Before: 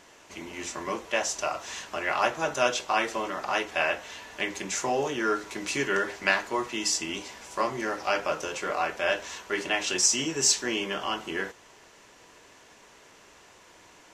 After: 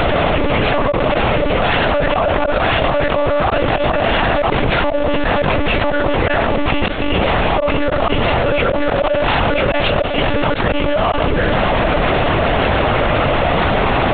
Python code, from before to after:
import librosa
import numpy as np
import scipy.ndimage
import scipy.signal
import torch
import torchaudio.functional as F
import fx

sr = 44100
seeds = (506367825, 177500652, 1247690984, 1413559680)

p1 = fx.delta_mod(x, sr, bps=32000, step_db=-18.0)
p2 = fx.peak_eq(p1, sr, hz=1900.0, db=-4.5, octaves=0.46)
p3 = (np.mod(10.0 ** (22.0 / 20.0) * p2 + 1.0, 2.0) - 1.0) / 10.0 ** (22.0 / 20.0)
p4 = p2 + (p3 * 10.0 ** (-9.0 / 20.0))
p5 = fx.gate_flip(p4, sr, shuts_db=-19.0, range_db=-35)
p6 = scipy.signal.sosfilt(scipy.signal.butter(2, 2700.0, 'lowpass', fs=sr, output='sos'), p5)
p7 = fx.peak_eq(p6, sr, hz=560.0, db=8.5, octaves=0.59)
p8 = p7 + 10.0 ** (-14.0 / 20.0) * np.pad(p7, (int(1002 * sr / 1000.0), 0))[:len(p7)]
p9 = fx.lpc_monotone(p8, sr, seeds[0], pitch_hz=290.0, order=10)
p10 = fx.env_flatten(p9, sr, amount_pct=100)
y = p10 * 10.0 ** (2.0 / 20.0)